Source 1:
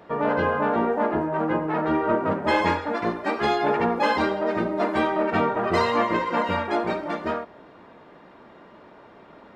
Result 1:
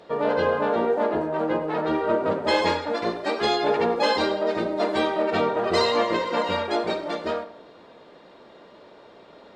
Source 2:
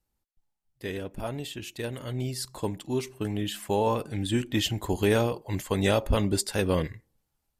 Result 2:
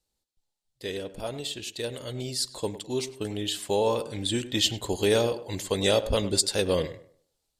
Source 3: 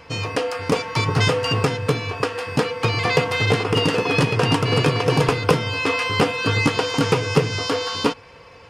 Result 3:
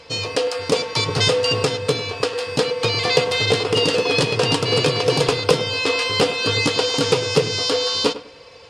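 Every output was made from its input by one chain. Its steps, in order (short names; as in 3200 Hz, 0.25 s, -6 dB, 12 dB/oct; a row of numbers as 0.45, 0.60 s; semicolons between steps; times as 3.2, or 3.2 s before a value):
graphic EQ 500/4000/8000 Hz +8/+12/+9 dB; on a send: tape echo 0.102 s, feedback 32%, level -13 dB, low-pass 1900 Hz; on the sum: gain -5 dB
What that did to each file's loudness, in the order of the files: 0.0, +1.0, +1.5 LU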